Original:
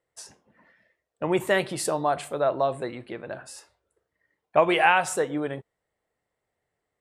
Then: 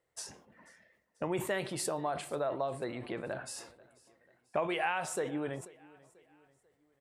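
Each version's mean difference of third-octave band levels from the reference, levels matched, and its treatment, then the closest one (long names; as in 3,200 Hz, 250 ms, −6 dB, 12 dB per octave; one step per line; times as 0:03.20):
5.0 dB: downward compressor 2.5 to 1, threshold −36 dBFS, peak gain reduction 14.5 dB
on a send: repeating echo 489 ms, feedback 45%, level −23 dB
on the sum: level that may fall only so fast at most 100 dB per second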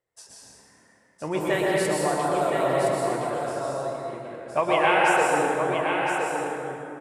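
10.0 dB: flanger 1.3 Hz, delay 6.9 ms, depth 9.1 ms, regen +65%
on a send: single-tap delay 1,017 ms −6 dB
on the sum: dense smooth reverb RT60 2.7 s, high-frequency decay 0.55×, pre-delay 105 ms, DRR −4.5 dB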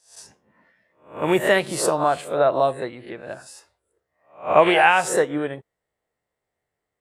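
3.5 dB: peak hold with a rise ahead of every peak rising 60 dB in 0.43 s
in parallel at +1 dB: brickwall limiter −15 dBFS, peak gain reduction 10.5 dB
on the sum: expander for the loud parts 1.5 to 1, over −30 dBFS
level +1 dB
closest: third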